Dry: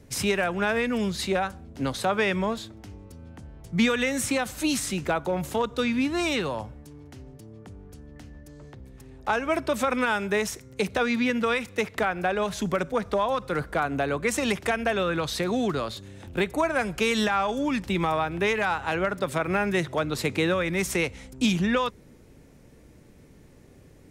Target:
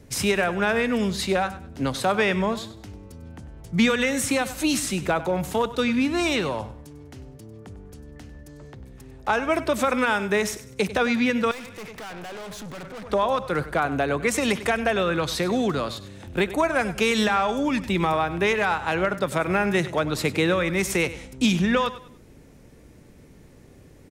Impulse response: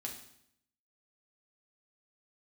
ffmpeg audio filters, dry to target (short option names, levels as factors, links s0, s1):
-filter_complex "[0:a]aecho=1:1:98|196|294:0.178|0.0551|0.0171,asettb=1/sr,asplit=3[s0][s1][s2];[s0]atrim=end=11.514[s3];[s1]atrim=start=11.51:end=13.1,asetpts=PTS-STARTPTS,afade=t=in:d=0.004:c=qsin,afade=t=out:st=1.586:d=0.004:c=qsin,aeval=exprs='(tanh(79.4*val(0)+0.25)-tanh(0.25))/79.4':c=same[s4];[s2]atrim=start=13.096[s5];[s3][s4]acrossfade=d=0.004:c1=hsin:c2=qsin[s6];[s6][s5]acrossfade=d=0.004:c1=qsin:c2=hsin,volume=1.33"